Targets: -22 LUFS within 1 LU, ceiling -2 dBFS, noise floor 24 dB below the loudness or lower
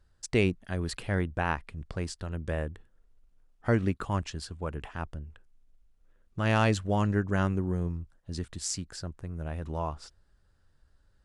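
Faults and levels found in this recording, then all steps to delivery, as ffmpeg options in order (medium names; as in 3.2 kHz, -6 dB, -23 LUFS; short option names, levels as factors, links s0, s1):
loudness -31.5 LUFS; peak level -12.0 dBFS; loudness target -22.0 LUFS
-> -af "volume=2.99"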